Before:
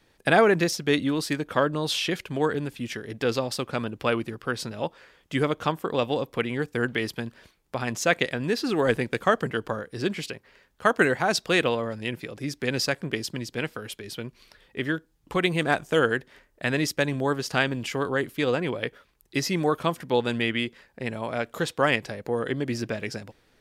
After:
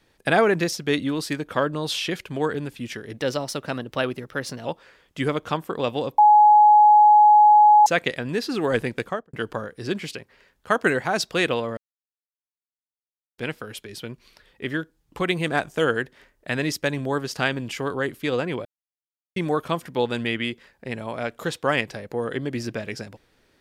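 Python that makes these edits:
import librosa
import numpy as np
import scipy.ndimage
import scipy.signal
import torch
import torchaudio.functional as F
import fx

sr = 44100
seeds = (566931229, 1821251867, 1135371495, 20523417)

y = fx.studio_fade_out(x, sr, start_s=9.11, length_s=0.37)
y = fx.edit(y, sr, fx.speed_span(start_s=3.17, length_s=1.63, speed=1.1),
    fx.bleep(start_s=6.33, length_s=1.68, hz=841.0, db=-9.5),
    fx.silence(start_s=11.92, length_s=1.61),
    fx.silence(start_s=18.8, length_s=0.71), tone=tone)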